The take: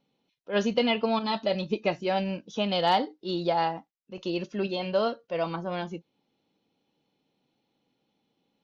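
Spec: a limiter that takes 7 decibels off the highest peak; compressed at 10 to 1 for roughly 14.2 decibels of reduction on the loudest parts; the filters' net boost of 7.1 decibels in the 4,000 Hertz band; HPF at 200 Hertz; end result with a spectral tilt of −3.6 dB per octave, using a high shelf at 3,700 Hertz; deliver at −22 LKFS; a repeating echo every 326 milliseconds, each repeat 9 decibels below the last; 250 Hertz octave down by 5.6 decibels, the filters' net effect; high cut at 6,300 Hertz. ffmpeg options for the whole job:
ffmpeg -i in.wav -af "highpass=200,lowpass=6300,equalizer=frequency=250:width_type=o:gain=-5,highshelf=frequency=3700:gain=8.5,equalizer=frequency=4000:width_type=o:gain=5,acompressor=threshold=-32dB:ratio=10,alimiter=level_in=3dB:limit=-24dB:level=0:latency=1,volume=-3dB,aecho=1:1:326|652|978|1304:0.355|0.124|0.0435|0.0152,volume=16.5dB" out.wav

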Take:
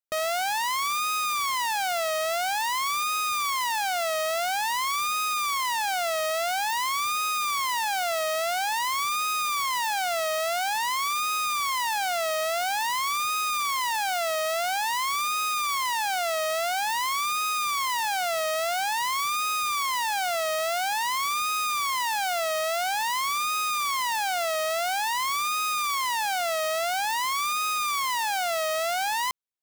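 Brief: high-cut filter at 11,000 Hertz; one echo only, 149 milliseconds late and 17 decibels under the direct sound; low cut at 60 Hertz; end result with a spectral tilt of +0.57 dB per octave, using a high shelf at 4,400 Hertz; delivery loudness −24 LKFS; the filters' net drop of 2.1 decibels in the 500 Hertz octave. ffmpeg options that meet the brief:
ffmpeg -i in.wav -af "highpass=60,lowpass=11000,equalizer=frequency=500:width_type=o:gain=-3.5,highshelf=frequency=4400:gain=3.5,aecho=1:1:149:0.141,volume=1.5dB" out.wav

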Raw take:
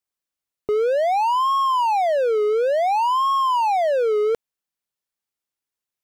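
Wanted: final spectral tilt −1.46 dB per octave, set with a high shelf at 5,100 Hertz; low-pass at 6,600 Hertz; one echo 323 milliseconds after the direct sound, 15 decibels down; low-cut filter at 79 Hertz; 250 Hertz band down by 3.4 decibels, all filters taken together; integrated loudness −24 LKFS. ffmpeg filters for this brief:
ffmpeg -i in.wav -af "highpass=79,lowpass=6600,equalizer=frequency=250:width_type=o:gain=-9,highshelf=frequency=5100:gain=8,aecho=1:1:323:0.178,volume=-3.5dB" out.wav

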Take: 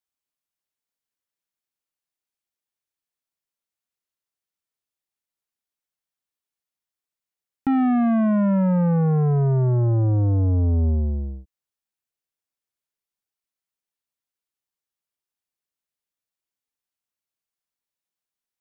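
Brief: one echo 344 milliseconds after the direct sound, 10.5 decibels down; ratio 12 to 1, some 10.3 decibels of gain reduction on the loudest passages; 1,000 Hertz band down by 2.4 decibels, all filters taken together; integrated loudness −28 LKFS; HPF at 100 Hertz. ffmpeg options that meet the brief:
ffmpeg -i in.wav -af "highpass=100,equalizer=frequency=1000:width_type=o:gain=-3.5,acompressor=threshold=-27dB:ratio=12,aecho=1:1:344:0.299,volume=3dB" out.wav

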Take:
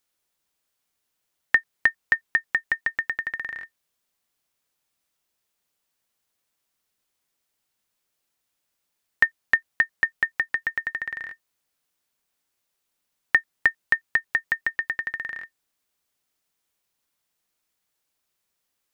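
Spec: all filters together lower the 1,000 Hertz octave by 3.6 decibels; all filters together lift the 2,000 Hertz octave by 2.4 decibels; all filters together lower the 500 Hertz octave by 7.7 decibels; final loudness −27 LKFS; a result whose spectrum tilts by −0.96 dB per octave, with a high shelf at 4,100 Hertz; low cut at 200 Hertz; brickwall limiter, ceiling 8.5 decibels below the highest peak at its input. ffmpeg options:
ffmpeg -i in.wav -af "highpass=200,equalizer=frequency=500:width_type=o:gain=-8.5,equalizer=frequency=1000:width_type=o:gain=-5,equalizer=frequency=2000:width_type=o:gain=5,highshelf=frequency=4100:gain=-4,volume=-0.5dB,alimiter=limit=-11.5dB:level=0:latency=1" out.wav

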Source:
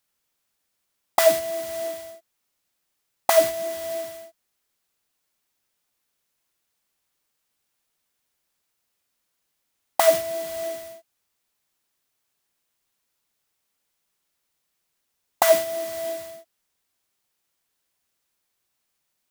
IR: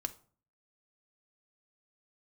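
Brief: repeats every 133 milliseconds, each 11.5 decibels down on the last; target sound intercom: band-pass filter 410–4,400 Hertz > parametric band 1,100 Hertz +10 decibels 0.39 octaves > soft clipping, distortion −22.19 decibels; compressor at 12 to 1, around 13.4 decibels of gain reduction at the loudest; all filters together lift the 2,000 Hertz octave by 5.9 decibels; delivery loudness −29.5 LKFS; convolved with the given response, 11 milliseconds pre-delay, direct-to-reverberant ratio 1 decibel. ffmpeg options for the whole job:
-filter_complex "[0:a]equalizer=frequency=2000:width_type=o:gain=6,acompressor=threshold=-25dB:ratio=12,aecho=1:1:133|266|399:0.266|0.0718|0.0194,asplit=2[link_01][link_02];[1:a]atrim=start_sample=2205,adelay=11[link_03];[link_02][link_03]afir=irnorm=-1:irlink=0,volume=-0.5dB[link_04];[link_01][link_04]amix=inputs=2:normalize=0,highpass=410,lowpass=4400,equalizer=frequency=1100:width_type=o:width=0.39:gain=10,asoftclip=threshold=-14.5dB,volume=-0.5dB"

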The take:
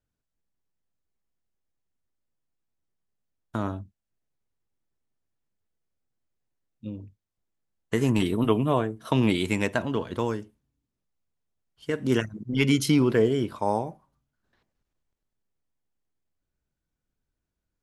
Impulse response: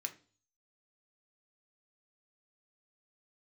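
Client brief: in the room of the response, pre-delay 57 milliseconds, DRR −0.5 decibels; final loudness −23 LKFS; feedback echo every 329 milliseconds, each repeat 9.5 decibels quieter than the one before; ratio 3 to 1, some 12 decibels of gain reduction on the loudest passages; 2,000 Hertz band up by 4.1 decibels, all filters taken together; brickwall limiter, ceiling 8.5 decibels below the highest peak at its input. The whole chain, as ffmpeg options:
-filter_complex "[0:a]equalizer=frequency=2000:width_type=o:gain=5,acompressor=threshold=-33dB:ratio=3,alimiter=limit=-23.5dB:level=0:latency=1,aecho=1:1:329|658|987|1316:0.335|0.111|0.0365|0.012,asplit=2[link_01][link_02];[1:a]atrim=start_sample=2205,adelay=57[link_03];[link_02][link_03]afir=irnorm=-1:irlink=0,volume=2dB[link_04];[link_01][link_04]amix=inputs=2:normalize=0,volume=12dB"

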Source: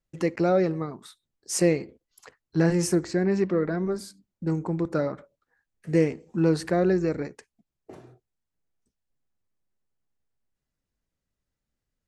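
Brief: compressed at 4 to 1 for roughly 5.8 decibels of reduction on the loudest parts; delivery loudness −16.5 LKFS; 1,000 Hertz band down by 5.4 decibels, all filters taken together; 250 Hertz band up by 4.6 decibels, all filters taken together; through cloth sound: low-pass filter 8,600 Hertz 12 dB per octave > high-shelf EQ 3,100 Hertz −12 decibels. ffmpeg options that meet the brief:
ffmpeg -i in.wav -af "equalizer=frequency=250:width_type=o:gain=9,equalizer=frequency=1000:width_type=o:gain=-9,acompressor=threshold=-19dB:ratio=4,lowpass=8600,highshelf=frequency=3100:gain=-12,volume=9.5dB" out.wav

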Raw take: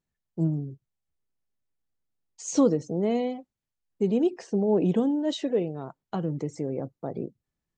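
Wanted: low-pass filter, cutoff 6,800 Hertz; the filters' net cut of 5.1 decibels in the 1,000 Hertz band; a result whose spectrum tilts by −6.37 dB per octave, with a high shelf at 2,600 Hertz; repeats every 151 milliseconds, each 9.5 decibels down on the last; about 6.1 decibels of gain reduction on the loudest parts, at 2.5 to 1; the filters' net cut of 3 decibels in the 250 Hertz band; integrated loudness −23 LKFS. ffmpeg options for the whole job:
ffmpeg -i in.wav -af "lowpass=6800,equalizer=frequency=250:width_type=o:gain=-3.5,equalizer=frequency=1000:width_type=o:gain=-6.5,highshelf=frequency=2600:gain=-5,acompressor=threshold=-28dB:ratio=2.5,aecho=1:1:151|302|453|604:0.335|0.111|0.0365|0.012,volume=10dB" out.wav

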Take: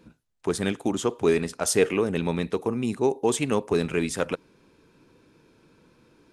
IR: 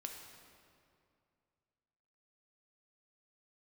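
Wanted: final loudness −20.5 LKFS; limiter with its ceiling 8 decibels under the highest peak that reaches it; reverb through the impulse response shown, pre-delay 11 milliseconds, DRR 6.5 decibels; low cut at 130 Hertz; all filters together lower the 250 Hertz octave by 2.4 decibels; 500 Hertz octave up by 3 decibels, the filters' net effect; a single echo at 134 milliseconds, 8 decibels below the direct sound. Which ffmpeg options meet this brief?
-filter_complex "[0:a]highpass=130,equalizer=frequency=250:width_type=o:gain=-5,equalizer=frequency=500:width_type=o:gain=5.5,alimiter=limit=-14dB:level=0:latency=1,aecho=1:1:134:0.398,asplit=2[link_01][link_02];[1:a]atrim=start_sample=2205,adelay=11[link_03];[link_02][link_03]afir=irnorm=-1:irlink=0,volume=-4dB[link_04];[link_01][link_04]amix=inputs=2:normalize=0,volume=4.5dB"

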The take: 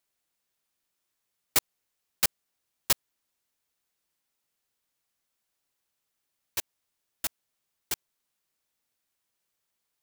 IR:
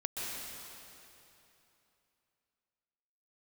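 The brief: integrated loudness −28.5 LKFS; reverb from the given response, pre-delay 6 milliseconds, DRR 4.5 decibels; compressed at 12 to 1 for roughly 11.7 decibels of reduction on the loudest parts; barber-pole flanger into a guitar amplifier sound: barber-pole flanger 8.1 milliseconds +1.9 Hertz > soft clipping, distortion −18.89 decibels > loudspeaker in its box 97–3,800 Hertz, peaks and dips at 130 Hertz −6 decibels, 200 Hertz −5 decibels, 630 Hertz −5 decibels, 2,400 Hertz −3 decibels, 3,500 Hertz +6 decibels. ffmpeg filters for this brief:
-filter_complex "[0:a]acompressor=threshold=-31dB:ratio=12,asplit=2[link_01][link_02];[1:a]atrim=start_sample=2205,adelay=6[link_03];[link_02][link_03]afir=irnorm=-1:irlink=0,volume=-8.5dB[link_04];[link_01][link_04]amix=inputs=2:normalize=0,asplit=2[link_05][link_06];[link_06]adelay=8.1,afreqshift=1.9[link_07];[link_05][link_07]amix=inputs=2:normalize=1,asoftclip=threshold=-25dB,highpass=97,equalizer=frequency=130:width_type=q:width=4:gain=-6,equalizer=frequency=200:width_type=q:width=4:gain=-5,equalizer=frequency=630:width_type=q:width=4:gain=-5,equalizer=frequency=2400:width_type=q:width=4:gain=-3,equalizer=frequency=3500:width_type=q:width=4:gain=6,lowpass=frequency=3800:width=0.5412,lowpass=frequency=3800:width=1.3066,volume=23dB"

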